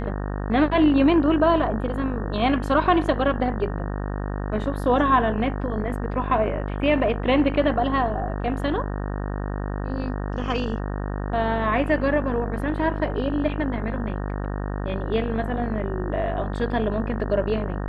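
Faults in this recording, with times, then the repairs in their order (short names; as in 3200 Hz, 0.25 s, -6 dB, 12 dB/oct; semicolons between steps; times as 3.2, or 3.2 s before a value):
buzz 50 Hz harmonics 37 -28 dBFS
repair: de-hum 50 Hz, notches 37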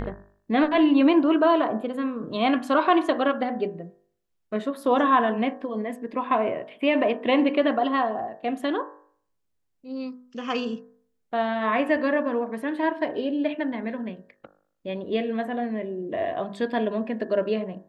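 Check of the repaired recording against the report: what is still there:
none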